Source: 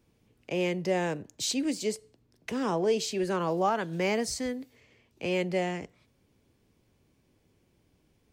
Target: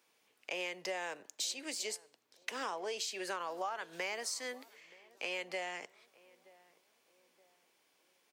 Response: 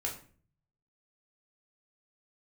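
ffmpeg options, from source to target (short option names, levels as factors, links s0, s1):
-filter_complex "[0:a]highpass=830,acompressor=threshold=0.01:ratio=6,asplit=2[s0][s1];[s1]adelay=925,lowpass=f=1100:p=1,volume=0.0891,asplit=2[s2][s3];[s3]adelay=925,lowpass=f=1100:p=1,volume=0.46,asplit=2[s4][s5];[s5]adelay=925,lowpass=f=1100:p=1,volume=0.46[s6];[s0][s2][s4][s6]amix=inputs=4:normalize=0,volume=1.58"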